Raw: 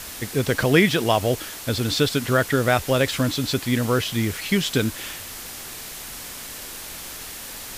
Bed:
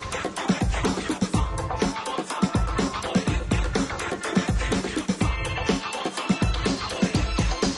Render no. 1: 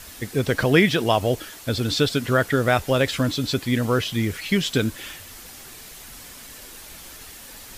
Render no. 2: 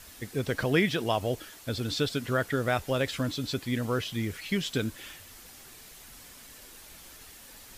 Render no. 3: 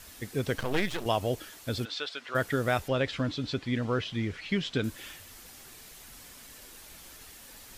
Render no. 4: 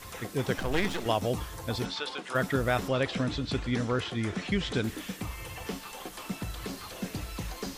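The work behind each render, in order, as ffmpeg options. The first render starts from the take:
ffmpeg -i in.wav -af "afftdn=noise_reduction=7:noise_floor=-36" out.wav
ffmpeg -i in.wav -af "volume=-8dB" out.wav
ffmpeg -i in.wav -filter_complex "[0:a]asettb=1/sr,asplit=3[link_01][link_02][link_03];[link_01]atrim=end=0.584[link_04];[link_02]atrim=start=0.58:end=1.06,asetpts=PTS-STARTPTS,afade=type=in:duration=0.004:curve=qsin,afade=type=out:start_time=0.476:duration=0.004:curve=qsin,aeval=exprs='max(val(0),0)':channel_layout=same[link_05];[link_03]atrim=start=1.056[link_06];[link_04][link_05]acrossfade=duration=0.004:curve1=hsin:curve2=qsin[link_07];[link_07][link_06]acrossfade=duration=0.004:curve1=qsin:curve2=hsin,asplit=3[link_08][link_09][link_10];[link_08]afade=type=out:start_time=1.84:duration=0.02[link_11];[link_09]highpass=790,lowpass=4000,afade=type=in:start_time=1.84:duration=0.02,afade=type=out:start_time=2.34:duration=0.02[link_12];[link_10]afade=type=in:start_time=2.34:duration=0.02[link_13];[link_11][link_12][link_13]amix=inputs=3:normalize=0,asettb=1/sr,asplit=3[link_14][link_15][link_16];[link_14]atrim=end=2.884[link_17];[link_15]atrim=start=2.88:end=4.84,asetpts=PTS-STARTPTS,afade=type=in:duration=0.004:curve=qsin,afade=type=out:start_time=1.956:duration=0.004:curve=qsin,lowpass=4400[link_18];[link_16]atrim=start=4.836[link_19];[link_17][link_18]acrossfade=duration=0.004:curve1=hsin:curve2=qsin[link_20];[link_20][link_19]acrossfade=duration=0.004:curve1=qsin:curve2=hsin" out.wav
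ffmpeg -i in.wav -i bed.wav -filter_complex "[1:a]volume=-13.5dB[link_01];[0:a][link_01]amix=inputs=2:normalize=0" out.wav

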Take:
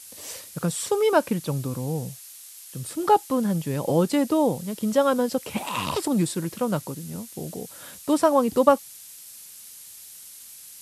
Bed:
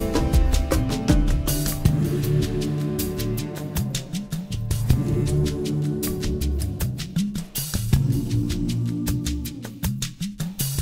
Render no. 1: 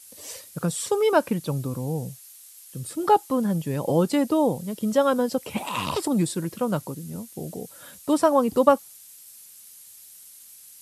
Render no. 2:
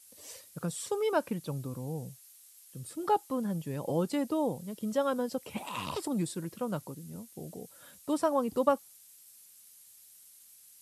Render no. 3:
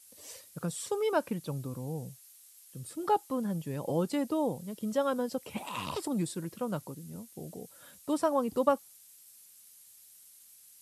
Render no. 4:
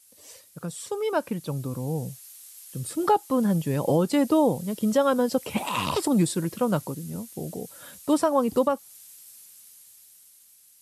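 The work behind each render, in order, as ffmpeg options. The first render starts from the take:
ffmpeg -i in.wav -af "afftdn=noise_reduction=6:noise_floor=-45" out.wav
ffmpeg -i in.wav -af "volume=-9dB" out.wav
ffmpeg -i in.wav -af anull out.wav
ffmpeg -i in.wav -af "dynaudnorm=framelen=300:gausssize=11:maxgain=10.5dB,alimiter=limit=-11.5dB:level=0:latency=1:release=300" out.wav

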